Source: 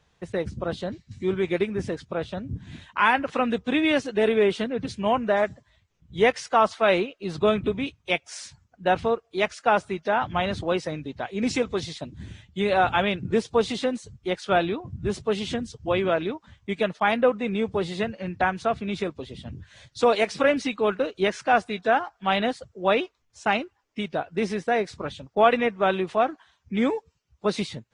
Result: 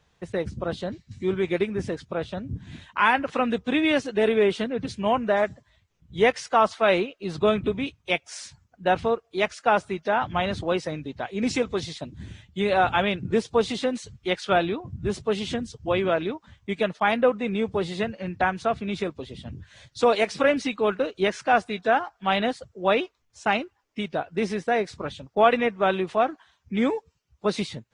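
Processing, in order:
0:13.95–0:14.52: parametric band 2,700 Hz +10 dB → +3 dB 2.3 octaves

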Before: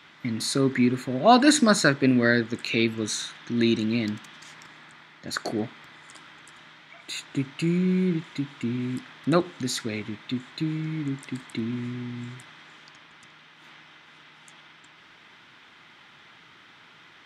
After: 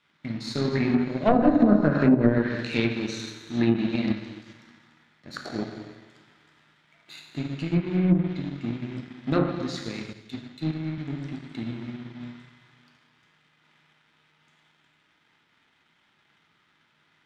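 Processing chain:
wavefolder on the positive side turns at −13.5 dBFS
low-pass filter 5,900 Hz 24 dB per octave
low-shelf EQ 160 Hz +5.5 dB
notch filter 1,100 Hz, Q 28
dense smooth reverb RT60 1.8 s, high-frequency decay 0.95×, DRR −1 dB
power curve on the samples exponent 1.4
treble cut that deepens with the level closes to 670 Hz, closed at −13 dBFS
0:10.13–0:10.98: multiband upward and downward expander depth 70%

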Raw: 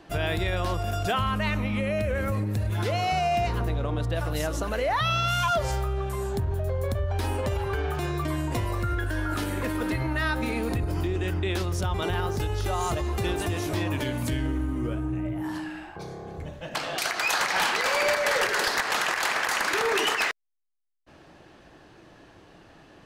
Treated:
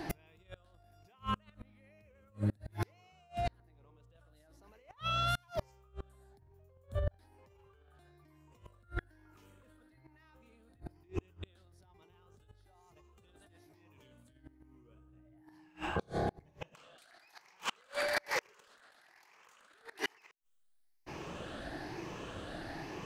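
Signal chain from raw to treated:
rippled gain that drifts along the octave scale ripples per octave 0.77, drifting +1.1 Hz, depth 8 dB
compressor whose output falls as the input rises −31 dBFS, ratio −1
gate with flip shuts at −24 dBFS, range −35 dB
level +2.5 dB

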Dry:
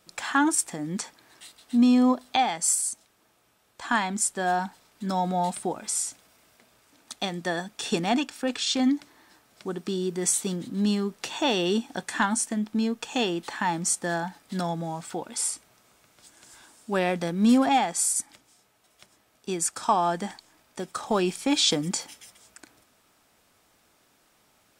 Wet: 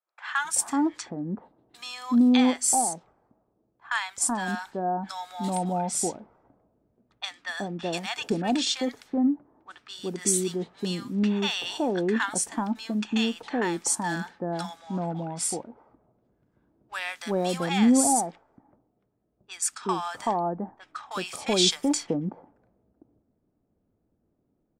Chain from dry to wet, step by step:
low-pass that shuts in the quiet parts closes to 320 Hz, open at −24.5 dBFS
multiband delay without the direct sound highs, lows 380 ms, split 980 Hz

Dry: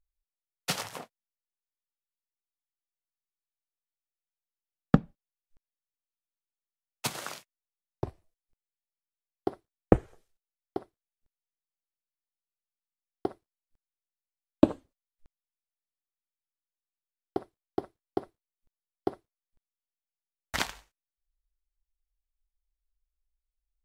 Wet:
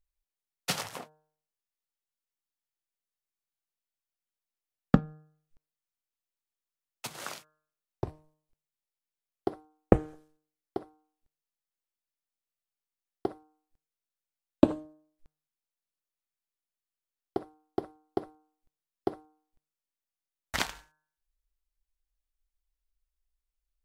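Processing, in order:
hum removal 153.8 Hz, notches 11
0:04.99–0:07.20: downward compressor 3 to 1, threshold −39 dBFS, peak gain reduction 10 dB

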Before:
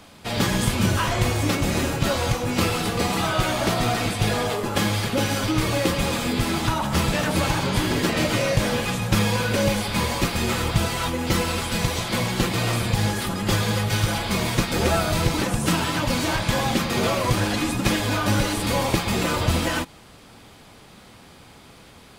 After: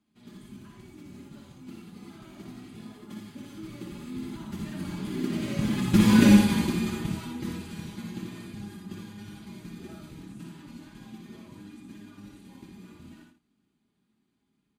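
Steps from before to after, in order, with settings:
source passing by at 0:09.31, 8 m/s, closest 1.8 metres
tempo change 1.5×
high-pass filter 120 Hz 6 dB per octave
low shelf with overshoot 400 Hz +8.5 dB, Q 3
notch filter 5,400 Hz, Q 11
comb filter 4.9 ms, depth 43%
multi-tap delay 59/82/139 ms −4/−6.5/−13 dB
level −2 dB

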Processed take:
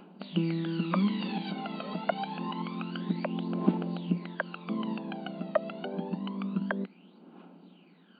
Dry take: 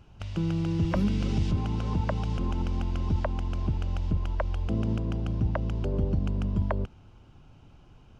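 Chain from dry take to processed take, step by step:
phase shifter 0.27 Hz, delay 1.6 ms, feedback 72%
brick-wall band-pass 170–4,700 Hz

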